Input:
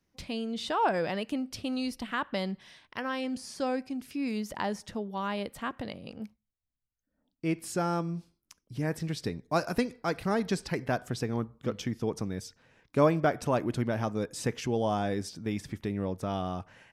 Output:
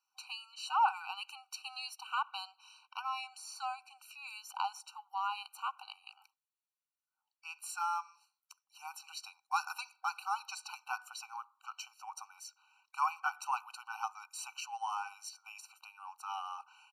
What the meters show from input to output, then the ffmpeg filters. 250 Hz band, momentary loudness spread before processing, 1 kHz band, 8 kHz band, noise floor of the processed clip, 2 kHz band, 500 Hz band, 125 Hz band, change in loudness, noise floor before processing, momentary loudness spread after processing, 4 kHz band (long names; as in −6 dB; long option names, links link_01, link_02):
below −40 dB, 9 LU, −1.5 dB, −2.5 dB, below −85 dBFS, −5.0 dB, below −35 dB, below −40 dB, −7.5 dB, −84 dBFS, 15 LU, −3.5 dB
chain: -af "aresample=32000,aresample=44100,afftfilt=real='re*eq(mod(floor(b*sr/1024/770),2),1)':imag='im*eq(mod(floor(b*sr/1024/770),2),1)':win_size=1024:overlap=0.75"